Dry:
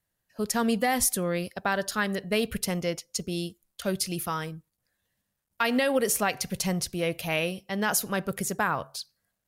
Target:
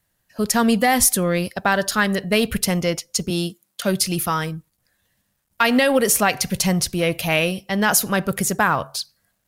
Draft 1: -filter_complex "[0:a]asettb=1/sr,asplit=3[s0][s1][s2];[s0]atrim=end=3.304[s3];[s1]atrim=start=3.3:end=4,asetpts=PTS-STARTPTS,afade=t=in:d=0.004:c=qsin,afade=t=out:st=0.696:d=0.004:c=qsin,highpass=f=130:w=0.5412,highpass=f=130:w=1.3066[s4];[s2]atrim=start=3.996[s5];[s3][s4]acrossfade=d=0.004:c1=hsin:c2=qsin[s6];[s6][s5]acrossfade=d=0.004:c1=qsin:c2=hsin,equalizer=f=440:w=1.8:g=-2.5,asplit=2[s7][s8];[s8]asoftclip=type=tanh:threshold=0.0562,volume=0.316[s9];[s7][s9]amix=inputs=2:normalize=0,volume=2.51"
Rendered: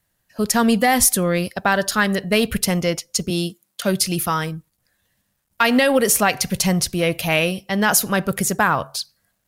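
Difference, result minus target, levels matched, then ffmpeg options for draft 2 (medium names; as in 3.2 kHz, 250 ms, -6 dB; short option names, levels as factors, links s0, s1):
saturation: distortion -5 dB
-filter_complex "[0:a]asettb=1/sr,asplit=3[s0][s1][s2];[s0]atrim=end=3.304[s3];[s1]atrim=start=3.3:end=4,asetpts=PTS-STARTPTS,afade=t=in:d=0.004:c=qsin,afade=t=out:st=0.696:d=0.004:c=qsin,highpass=f=130:w=0.5412,highpass=f=130:w=1.3066[s4];[s2]atrim=start=3.996[s5];[s3][s4]acrossfade=d=0.004:c1=hsin:c2=qsin[s6];[s6][s5]acrossfade=d=0.004:c1=qsin:c2=hsin,equalizer=f=440:w=1.8:g=-2.5,asplit=2[s7][s8];[s8]asoftclip=type=tanh:threshold=0.0211,volume=0.316[s9];[s7][s9]amix=inputs=2:normalize=0,volume=2.51"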